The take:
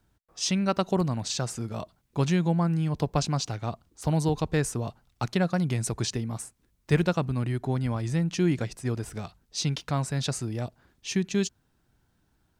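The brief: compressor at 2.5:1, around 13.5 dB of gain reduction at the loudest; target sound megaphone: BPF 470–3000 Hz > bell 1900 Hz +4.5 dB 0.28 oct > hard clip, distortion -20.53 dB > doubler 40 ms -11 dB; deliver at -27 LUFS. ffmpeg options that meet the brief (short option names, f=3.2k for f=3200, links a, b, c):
-filter_complex "[0:a]acompressor=threshold=-39dB:ratio=2.5,highpass=470,lowpass=3k,equalizer=f=1.9k:t=o:w=0.28:g=4.5,asoftclip=type=hard:threshold=-30.5dB,asplit=2[a][b];[b]adelay=40,volume=-11dB[c];[a][c]amix=inputs=2:normalize=0,volume=19.5dB"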